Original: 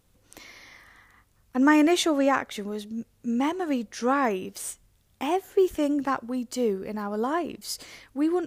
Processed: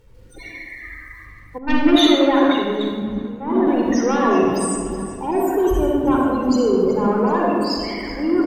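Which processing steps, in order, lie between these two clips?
0:07.07–0:07.60: high-pass filter 1,200 Hz → 340 Hz 6 dB per octave
in parallel at −2 dB: compressor whose output falls as the input rises −34 dBFS, ratio −1
on the sum: transient designer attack −4 dB, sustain +7 dB
spectral peaks only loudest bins 16
bit reduction 11 bits
sine wavefolder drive 7 dB, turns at −8 dBFS
repeating echo 377 ms, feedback 53%, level −15 dB
convolution reverb RT60 2.0 s, pre-delay 40 ms, DRR −2 dB
0:01.58–0:03.67: multiband upward and downward expander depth 70%
level −9 dB

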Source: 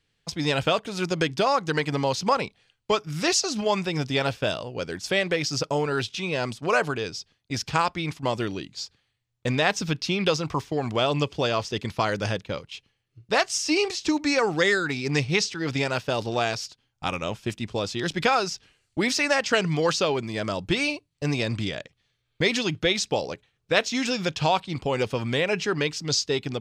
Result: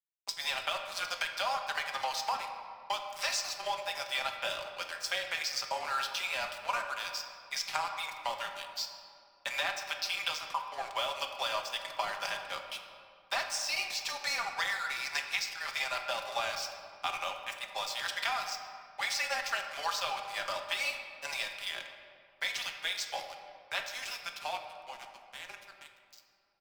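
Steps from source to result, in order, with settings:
fade-out on the ending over 6.00 s
Butterworth high-pass 670 Hz 48 dB per octave
notch filter 6,700 Hz, Q 17
comb filter 4.9 ms, depth 56%
downward compressor 6 to 1, threshold −29 dBFS, peak gain reduction 12 dB
dead-zone distortion −42 dBFS
frequency shifter −32 Hz
on a send: convolution reverb RT60 2.5 s, pre-delay 6 ms, DRR 4 dB

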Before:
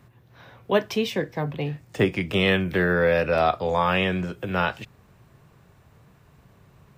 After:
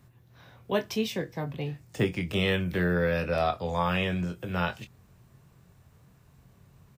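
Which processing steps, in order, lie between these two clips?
bass and treble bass +5 dB, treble +7 dB
double-tracking delay 23 ms −9 dB
level −7.5 dB

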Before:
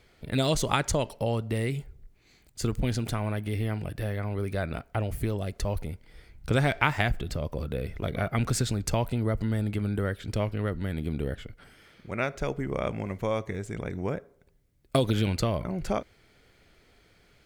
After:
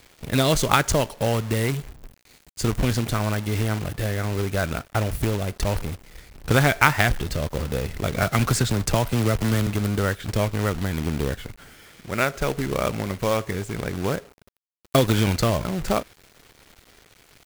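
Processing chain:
dynamic equaliser 1,400 Hz, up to +4 dB, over −43 dBFS, Q 1.7
log-companded quantiser 4 bits
0:08.22–0:09.67: multiband upward and downward compressor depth 40%
level +5 dB

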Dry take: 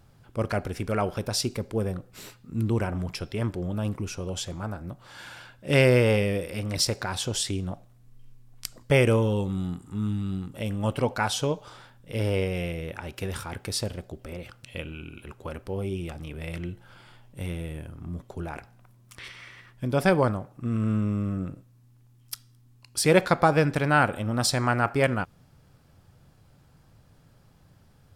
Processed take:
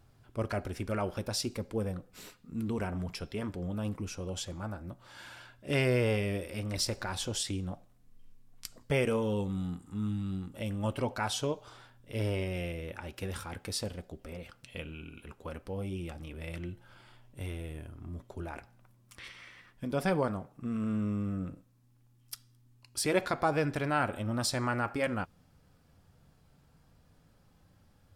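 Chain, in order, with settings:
in parallel at −1.5 dB: brickwall limiter −18 dBFS, peak gain reduction 12 dB
0:06.72–0:07.30: on the sum: background noise brown −43 dBFS
flanger 0.17 Hz, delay 2.8 ms, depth 1.7 ms, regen −60%
level −6.5 dB

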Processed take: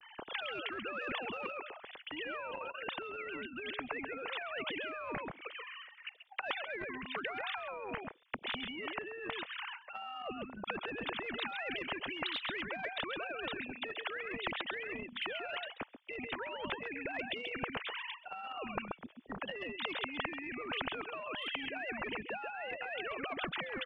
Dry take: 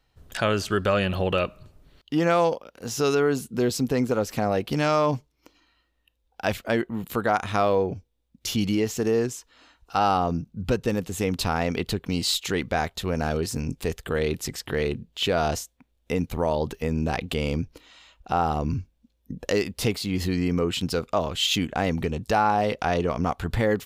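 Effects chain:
three sine waves on the formant tracks
treble cut that deepens with the level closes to 3,000 Hz, closed at −22 dBFS
on a send: single-tap delay 134 ms −16.5 dB
on the sum: brickwall limiter −17.5 dBFS, peak gain reduction 7 dB
parametric band 2,700 Hz +3.5 dB 0.86 octaves
reversed playback
downward compressor 5 to 1, threshold −37 dBFS, peak gain reduction 15 dB
reversed playback
every bin compressed towards the loudest bin 4 to 1
level +5.5 dB

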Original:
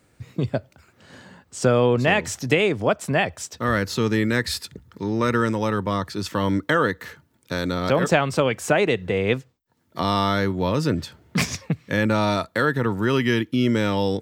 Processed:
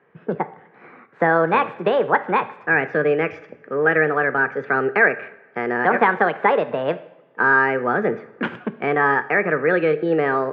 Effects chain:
coupled-rooms reverb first 0.87 s, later 2.4 s, from −17 dB, DRR 11.5 dB
wrong playback speed 33 rpm record played at 45 rpm
loudspeaker in its box 250–2,000 Hz, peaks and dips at 300 Hz −7 dB, 440 Hz +7 dB, 660 Hz −5 dB, 1,100 Hz +4 dB, 1,600 Hz +8 dB
level +2.5 dB

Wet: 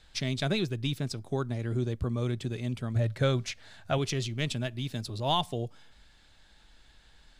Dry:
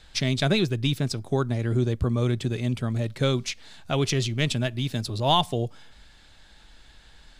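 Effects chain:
0:02.95–0:03.98: graphic EQ with 15 bands 100 Hz +11 dB, 630 Hz +7 dB, 1,600 Hz +7 dB
level −6.5 dB

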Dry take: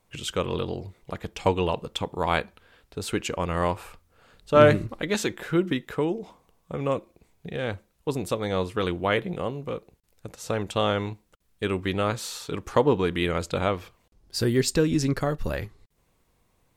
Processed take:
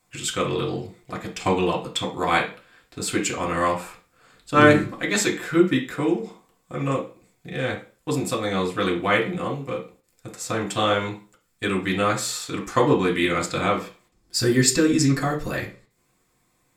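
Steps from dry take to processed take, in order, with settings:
in parallel at −11.5 dB: dead-zone distortion −44 dBFS
on the sum: convolution reverb RT60 0.35 s, pre-delay 3 ms, DRR −3 dB

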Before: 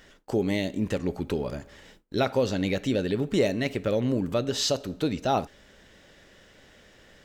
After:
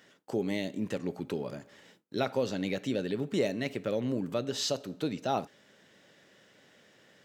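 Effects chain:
high-pass filter 120 Hz 24 dB per octave
level −5.5 dB

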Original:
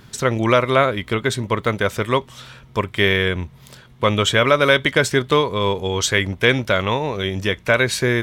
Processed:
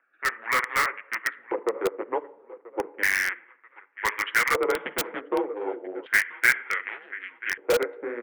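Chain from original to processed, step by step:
adaptive Wiener filter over 41 samples
0:06.64–0:07.51: parametric band 960 Hz −10 dB 1.6 octaves
flanger 1.8 Hz, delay 4.6 ms, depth 7.5 ms, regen −15%
spectral tilt +2 dB per octave
on a send: repeating echo 985 ms, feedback 34%, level −19 dB
on the sum: harmonic and percussive parts rebalanced percussive +4 dB
rectangular room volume 2,100 cubic metres, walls furnished, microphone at 0.54 metres
single-sideband voice off tune −110 Hz 470–2,500 Hz
auto-filter band-pass square 0.33 Hz 500–1,800 Hz
in parallel at −5 dB: wrap-around overflow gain 18.5 dB
0:04.75–0:05.21: on the sum: every bin compressed towards the loudest bin 2 to 1

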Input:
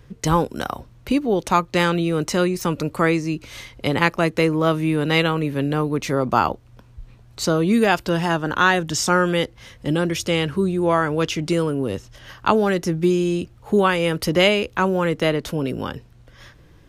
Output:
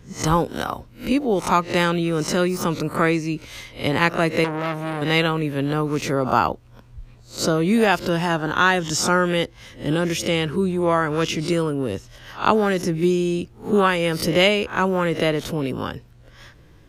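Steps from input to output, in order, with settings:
peak hold with a rise ahead of every peak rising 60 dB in 0.30 s
0:04.44–0:05.02: saturating transformer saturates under 1,800 Hz
level −1 dB

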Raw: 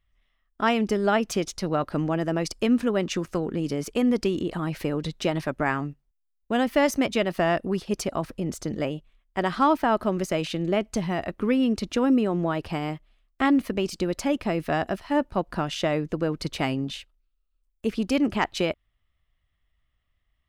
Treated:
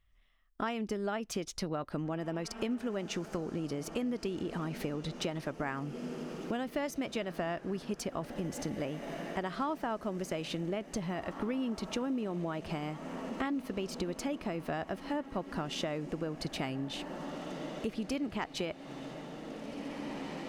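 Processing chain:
feedback delay with all-pass diffusion 1,906 ms, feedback 59%, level −16 dB
downward compressor 4 to 1, threshold −34 dBFS, peak gain reduction 15 dB

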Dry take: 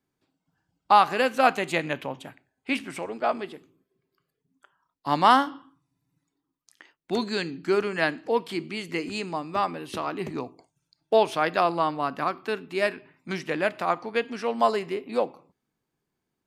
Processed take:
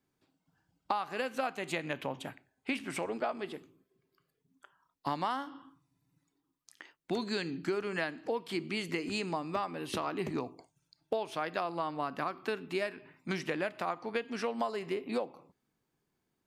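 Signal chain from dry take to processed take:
downward compressor 10 to 1, threshold −30 dBFS, peak gain reduction 18.5 dB

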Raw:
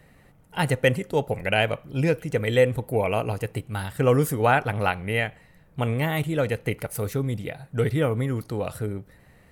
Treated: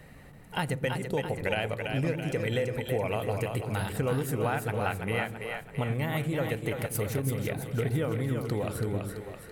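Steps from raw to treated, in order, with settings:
downward compressor 5 to 1, threshold −32 dBFS, peak gain reduction 16.5 dB
on a send: echo with a time of its own for lows and highs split 370 Hz, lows 117 ms, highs 333 ms, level −5 dB
on the sum: level +3.5 dB

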